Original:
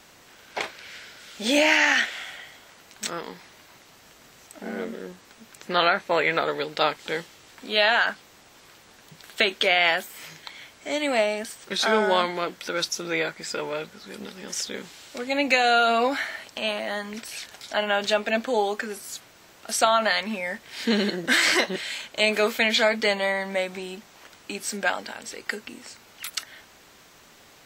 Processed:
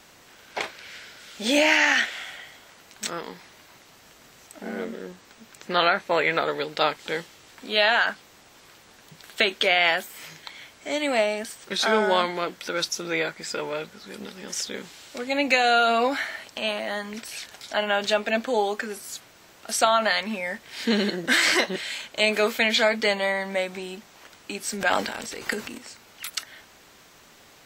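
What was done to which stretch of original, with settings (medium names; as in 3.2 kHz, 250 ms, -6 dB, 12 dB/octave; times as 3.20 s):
4.86–5.70 s: peaking EQ 11 kHz -6.5 dB 0.31 oct
24.73–25.78 s: transient shaper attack +1 dB, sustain +11 dB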